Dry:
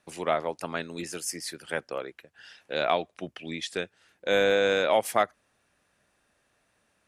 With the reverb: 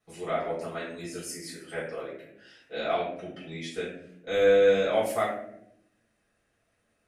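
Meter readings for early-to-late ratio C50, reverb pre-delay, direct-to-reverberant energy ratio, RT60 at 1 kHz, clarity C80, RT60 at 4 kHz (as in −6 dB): 3.0 dB, 4 ms, −11.5 dB, 0.60 s, 6.5 dB, 0.45 s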